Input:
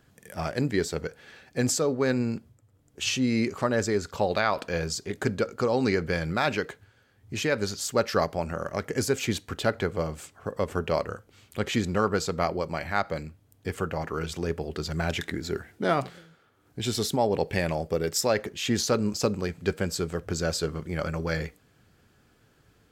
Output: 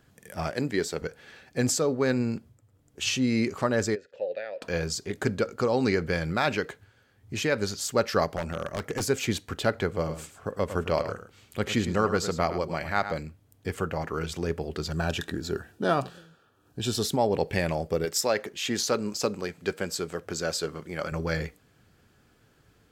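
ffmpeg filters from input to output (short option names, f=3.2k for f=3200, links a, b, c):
-filter_complex "[0:a]asettb=1/sr,asplit=3[a][b][c];[a]atrim=end=0.504[d];[b]atrim=start=0.5:end=1.02,asetpts=PTS-STARTPTS,afade=t=in:d=0.004:c=qsin,afade=t=out:st=0.516:d=0.004:c=qsin,highpass=f=200:p=1[e];[c]atrim=start=1.016[f];[d][e]acrossfade=d=0.004:c1=hsin:c2=qsin[g];[g][f]acrossfade=d=0.004:c1=qsin:c2=hsin,asplit=3[h][i][j];[h]afade=t=out:st=3.94:d=0.02[k];[i]asplit=3[l][m][n];[l]bandpass=f=530:t=q:w=8,volume=0dB[o];[m]bandpass=f=1.84k:t=q:w=8,volume=-6dB[p];[n]bandpass=f=2.48k:t=q:w=8,volume=-9dB[q];[o][p][q]amix=inputs=3:normalize=0,afade=t=in:st=3.94:d=0.02,afade=t=out:st=4.61:d=0.02[r];[j]afade=t=in:st=4.61:d=0.02[s];[k][r][s]amix=inputs=3:normalize=0,asettb=1/sr,asplit=3[t][u][v];[t]atrim=end=8.364[w];[u]atrim=start=8.36:end=9.09,asetpts=PTS-STARTPTS,afade=t=in:d=0.004:c=qsin,afade=t=out:st=0.726:d=0.004:c=qsin,aeval=exprs='0.0708*(abs(mod(val(0)/0.0708+3,4)-2)-1)':c=same[x];[v]atrim=start=9.086[y];[w][x]acrossfade=d=0.004:c1=hsin:c2=qsin[z];[z][y]acrossfade=d=0.004:c1=qsin:c2=hsin,asettb=1/sr,asplit=3[aa][ab][ac];[aa]atrim=end=9.934[ad];[ab]atrim=start=9.93:end=13.15,asetpts=PTS-STARTPTS,afade=t=in:d=0.004:c=qsin,afade=t=out:st=3.216:d=0.004:c=qsin,aecho=1:1:106:0.282,atrim=end_sample=142002[ae];[ac]atrim=start=13.146[af];[ad][ae]acrossfade=d=0.004:c1=hsin:c2=qsin[ag];[ag][af]acrossfade=d=0.004:c1=qsin:c2=hsin,asettb=1/sr,asplit=3[ah][ai][aj];[ah]atrim=end=14.914[ak];[ai]atrim=start=14.91:end=17.05,asetpts=PTS-STARTPTS,afade=t=in:d=0.004:c=qsin,afade=t=out:st=2.136:d=0.004:c=qsin,asuperstop=centerf=2100:order=4:qfactor=4.5[al];[aj]atrim=start=17.046[am];[ak][al]acrossfade=d=0.004:c1=hsin:c2=qsin[an];[an][am]acrossfade=d=0.004:c1=qsin:c2=hsin,asettb=1/sr,asplit=3[ao][ap][aq];[ao]atrim=end=18.054[ar];[ap]atrim=start=18.05:end=21.12,asetpts=PTS-STARTPTS,afade=t=in:d=0.004:c=qsin,afade=t=out:st=3.066:d=0.004:c=qsin,highpass=f=310:p=1[as];[aq]atrim=start=21.116[at];[ar][as]acrossfade=d=0.004:c1=hsin:c2=qsin[au];[au][at]acrossfade=d=0.004:c1=qsin:c2=hsin"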